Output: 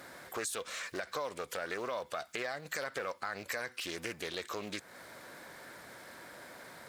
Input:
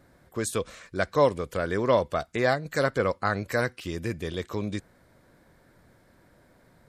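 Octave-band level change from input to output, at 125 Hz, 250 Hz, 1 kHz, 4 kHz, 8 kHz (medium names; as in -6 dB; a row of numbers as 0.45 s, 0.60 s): -21.5 dB, -15.0 dB, -11.0 dB, -2.5 dB, -2.5 dB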